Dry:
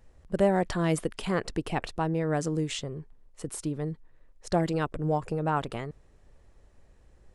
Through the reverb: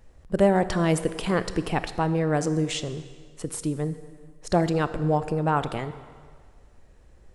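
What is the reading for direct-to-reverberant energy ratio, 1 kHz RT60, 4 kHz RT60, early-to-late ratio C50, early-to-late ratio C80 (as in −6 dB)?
12.0 dB, 1.8 s, 1.6 s, 13.0 dB, 14.0 dB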